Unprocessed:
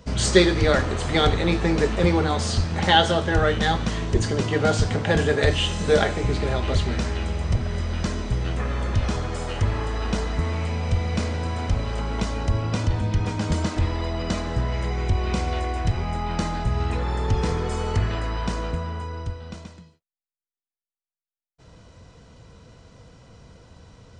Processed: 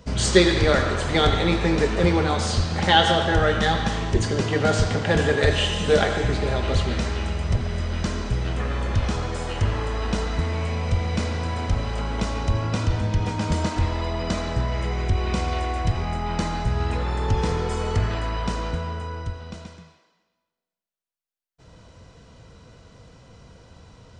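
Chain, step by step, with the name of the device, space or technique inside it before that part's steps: filtered reverb send (on a send: high-pass 560 Hz + low-pass 5.6 kHz 12 dB/octave + reverberation RT60 1.3 s, pre-delay 75 ms, DRR 5.5 dB)

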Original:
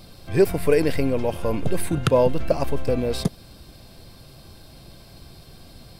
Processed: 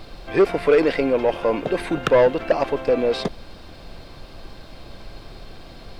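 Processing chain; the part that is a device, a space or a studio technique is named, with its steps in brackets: aircraft cabin announcement (band-pass 350–3400 Hz; saturation -16.5 dBFS, distortion -12 dB; brown noise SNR 16 dB); trim +7.5 dB

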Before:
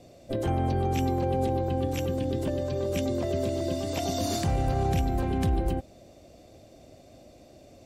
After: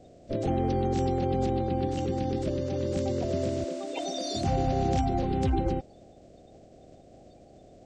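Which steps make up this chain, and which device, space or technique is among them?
3.64–4.35 s: high-pass 420 Hz 12 dB/octave; clip after many re-uploads (low-pass 6.9 kHz 24 dB/octave; coarse spectral quantiser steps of 30 dB)

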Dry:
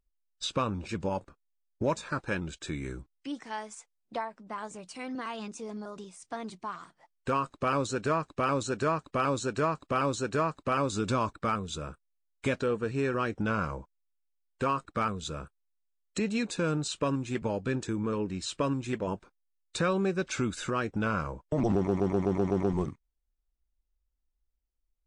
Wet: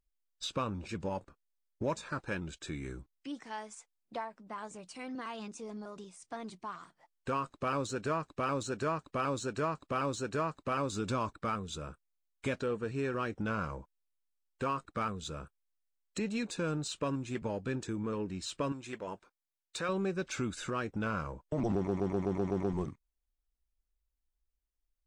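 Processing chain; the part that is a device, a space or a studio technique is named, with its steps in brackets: parallel distortion (in parallel at -13 dB: hard clipper -36.5 dBFS, distortion -4 dB); 18.72–19.89 s: on the sum: bass shelf 300 Hz -12 dB; trim -5.5 dB

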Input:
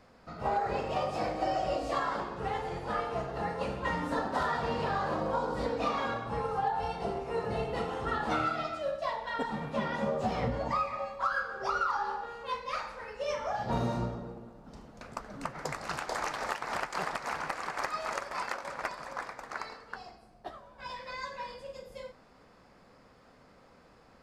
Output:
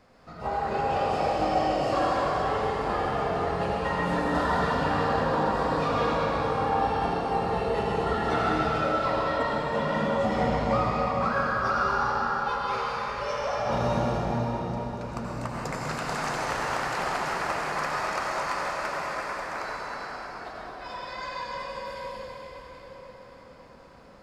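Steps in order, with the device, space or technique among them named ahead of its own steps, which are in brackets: cathedral (reverberation RT60 5.8 s, pre-delay 76 ms, DRR -5 dB)

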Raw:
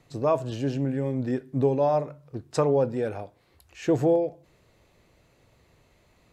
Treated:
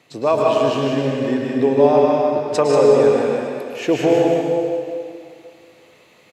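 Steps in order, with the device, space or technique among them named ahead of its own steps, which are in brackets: stadium PA (high-pass 220 Hz 12 dB/octave; peaking EQ 2.8 kHz +6.5 dB 1.1 oct; loudspeakers at several distances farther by 52 m -9 dB, 64 m -6 dB; reverberation RT60 2.3 s, pre-delay 101 ms, DRR -1 dB); trim +5.5 dB

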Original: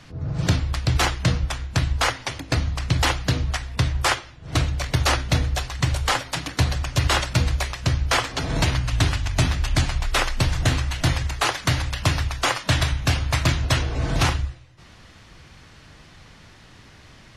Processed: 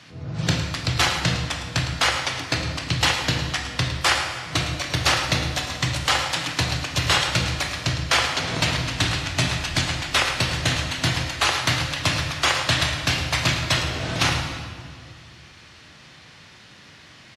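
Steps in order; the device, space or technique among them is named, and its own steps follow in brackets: PA in a hall (high-pass 110 Hz 12 dB/octave; peaking EQ 3.4 kHz +6.5 dB 2.4 oct; delay 108 ms -11.5 dB; reverberation RT60 2.0 s, pre-delay 14 ms, DRR 4 dB); trim -3 dB

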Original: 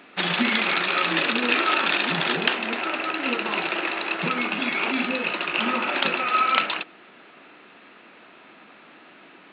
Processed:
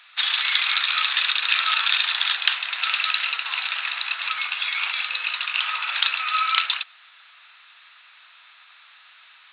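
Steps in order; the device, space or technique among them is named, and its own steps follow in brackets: 2.82–3.25 s: treble shelf 2.4 kHz +10 dB; headphones lying on a table (high-pass 1.1 kHz 24 dB/octave; peaking EQ 3.8 kHz +11 dB 0.52 oct); trim -1.5 dB

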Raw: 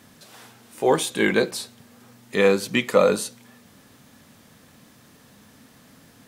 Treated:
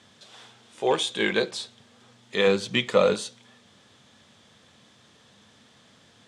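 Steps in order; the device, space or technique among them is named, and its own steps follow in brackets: 2.47–3.14 s: bass shelf 200 Hz +8.5 dB; car door speaker with a rattle (rattle on loud lows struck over -25 dBFS, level -26 dBFS; cabinet simulation 81–8100 Hz, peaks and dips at 160 Hz -6 dB, 270 Hz -8 dB, 3.4 kHz +9 dB); trim -3.5 dB

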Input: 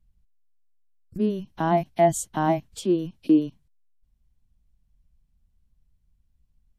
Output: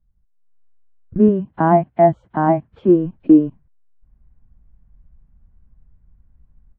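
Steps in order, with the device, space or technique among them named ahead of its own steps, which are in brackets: 1.28–2.89 s: high-pass 70 Hz 12 dB/octave; action camera in a waterproof case (low-pass 1.7 kHz 24 dB/octave; level rider gain up to 15 dB; trim -1 dB; AAC 48 kbps 24 kHz)

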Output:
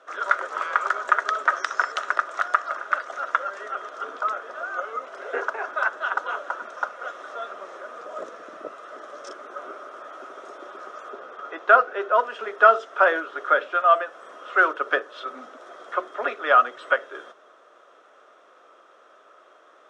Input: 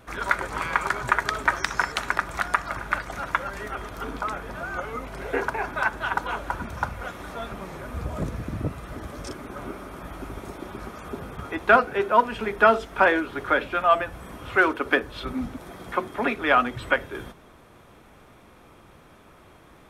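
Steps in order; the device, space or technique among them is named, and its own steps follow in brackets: 11.10–12.16 s: distance through air 64 m; phone speaker on a table (cabinet simulation 420–6700 Hz, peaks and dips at 600 Hz +5 dB, 880 Hz -7 dB, 1.3 kHz +8 dB, 2.3 kHz -9 dB, 4.4 kHz -7 dB); trim -1 dB

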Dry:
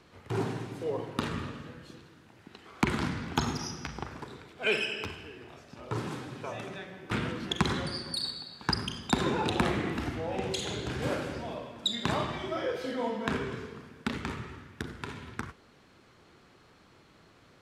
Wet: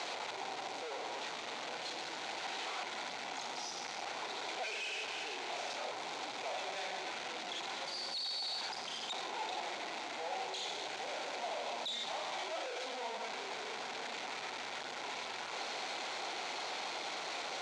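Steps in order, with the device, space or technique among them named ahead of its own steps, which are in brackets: home computer beeper (one-bit comparator; cabinet simulation 760–5800 Hz, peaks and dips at 760 Hz +6 dB, 1.2 kHz -9 dB, 1.7 kHz -8 dB, 2.9 kHz -5 dB, 5.2 kHz -6 dB)

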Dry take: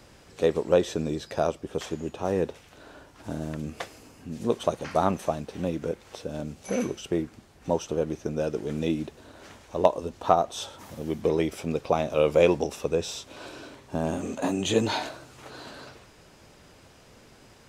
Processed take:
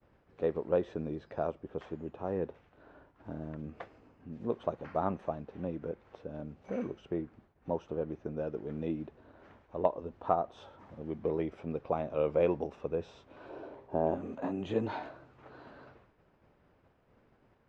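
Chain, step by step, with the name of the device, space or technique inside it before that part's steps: hearing-loss simulation (low-pass 1.7 kHz 12 dB/octave; expander -49 dBFS); 13.49–14.15 s: high-order bell 560 Hz +9 dB; trim -8 dB

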